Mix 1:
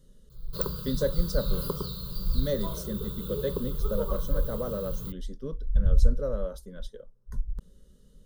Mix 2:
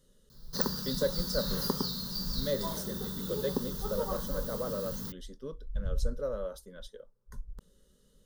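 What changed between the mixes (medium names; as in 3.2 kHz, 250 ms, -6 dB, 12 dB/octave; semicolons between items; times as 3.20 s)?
background: remove static phaser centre 1.2 kHz, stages 8; master: add bass shelf 280 Hz -11.5 dB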